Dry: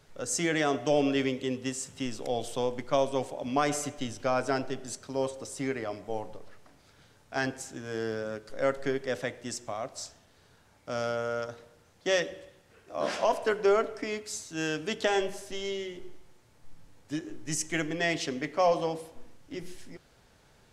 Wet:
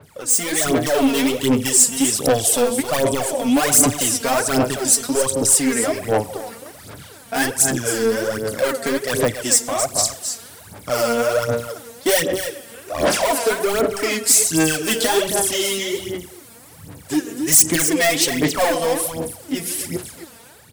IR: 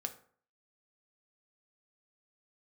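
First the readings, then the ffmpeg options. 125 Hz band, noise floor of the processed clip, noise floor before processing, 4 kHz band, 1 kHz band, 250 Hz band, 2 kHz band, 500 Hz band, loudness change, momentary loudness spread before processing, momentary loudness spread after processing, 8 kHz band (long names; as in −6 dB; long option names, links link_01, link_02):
+11.5 dB, −44 dBFS, −62 dBFS, +14.5 dB, +9.0 dB, +12.5 dB, +10.5 dB, +9.5 dB, +13.5 dB, 14 LU, 13 LU, +22.5 dB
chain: -filter_complex "[0:a]highpass=frequency=73:width=0.5412,highpass=frequency=73:width=1.3066,asplit=2[link_01][link_02];[link_02]acompressor=threshold=-38dB:ratio=6,volume=2dB[link_03];[link_01][link_03]amix=inputs=2:normalize=0,asoftclip=type=hard:threshold=-24dB,aexciter=amount=4.2:drive=3.9:freq=8400,aecho=1:1:270:0.316,dynaudnorm=framelen=110:gausssize=11:maxgain=8.5dB,aphaser=in_gain=1:out_gain=1:delay=4.4:decay=0.72:speed=1.3:type=sinusoidal,asoftclip=type=tanh:threshold=-9dB,adynamicequalizer=threshold=0.0126:dfrequency=3900:dqfactor=0.7:tfrequency=3900:tqfactor=0.7:attack=5:release=100:ratio=0.375:range=3.5:mode=boostabove:tftype=highshelf,volume=-1dB"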